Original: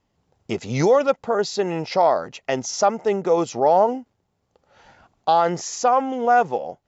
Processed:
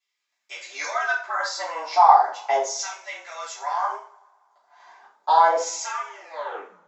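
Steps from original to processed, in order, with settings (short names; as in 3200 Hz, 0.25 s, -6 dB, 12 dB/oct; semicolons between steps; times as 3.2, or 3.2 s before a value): tape stop at the end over 0.80 s; bell 2700 Hz -7.5 dB 0.31 oct; frequency shift +150 Hz; LFO high-pass saw down 0.36 Hz 560–2700 Hz; two-slope reverb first 0.4 s, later 1.8 s, from -27 dB, DRR -8.5 dB; gain -10.5 dB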